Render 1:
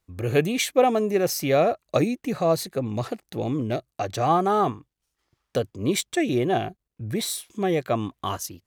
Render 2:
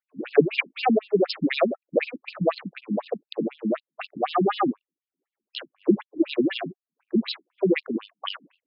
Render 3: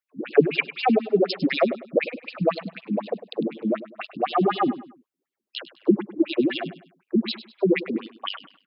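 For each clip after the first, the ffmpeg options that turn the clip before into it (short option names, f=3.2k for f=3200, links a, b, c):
-af "equalizer=f=1k:t=o:w=1:g=-9,equalizer=f=2k:t=o:w=1:g=4,equalizer=f=8k:t=o:w=1:g=3,adynamicsmooth=sensitivity=5.5:basefreq=820,afftfilt=real='re*between(b*sr/1024,210*pow(3800/210,0.5+0.5*sin(2*PI*4*pts/sr))/1.41,210*pow(3800/210,0.5+0.5*sin(2*PI*4*pts/sr))*1.41)':imag='im*between(b*sr/1024,210*pow(3800/210,0.5+0.5*sin(2*PI*4*pts/sr))/1.41,210*pow(3800/210,0.5+0.5*sin(2*PI*4*pts/sr))*1.41)':win_size=1024:overlap=0.75,volume=8.5dB"
-af "aecho=1:1:101|202|303:0.178|0.0605|0.0206,volume=1dB"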